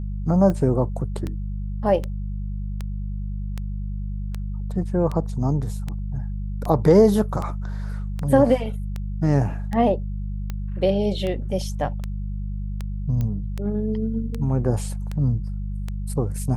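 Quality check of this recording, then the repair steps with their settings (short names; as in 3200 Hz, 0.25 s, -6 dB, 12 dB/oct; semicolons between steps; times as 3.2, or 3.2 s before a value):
hum 50 Hz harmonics 4 -28 dBFS
tick 78 rpm -16 dBFS
13.21 pop -16 dBFS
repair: de-click; de-hum 50 Hz, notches 4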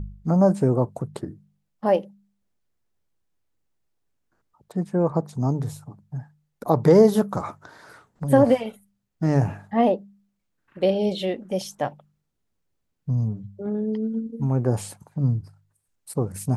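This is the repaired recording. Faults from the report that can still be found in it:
none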